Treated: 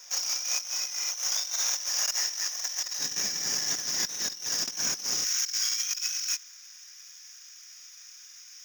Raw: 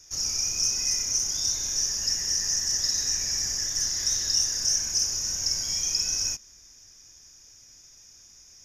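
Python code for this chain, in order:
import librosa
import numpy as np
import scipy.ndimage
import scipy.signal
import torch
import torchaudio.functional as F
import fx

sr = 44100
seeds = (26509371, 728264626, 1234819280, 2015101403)

y = scipy.signal.medfilt(x, 5)
y = fx.highpass(y, sr, hz=fx.steps((0.0, 590.0), (2.99, 150.0), (5.23, 1300.0)), slope=24)
y = fx.over_compress(y, sr, threshold_db=-34.0, ratio=-0.5)
y = fx.buffer_crackle(y, sr, first_s=0.99, period_s=0.52, block=2048, kind='repeat')
y = y * 10.0 ** (4.0 / 20.0)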